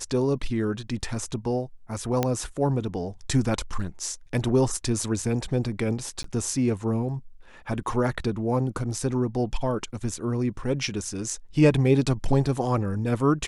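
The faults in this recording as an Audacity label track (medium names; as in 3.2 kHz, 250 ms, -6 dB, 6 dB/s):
2.230000	2.230000	pop -9 dBFS
6.230000	6.240000	dropout 13 ms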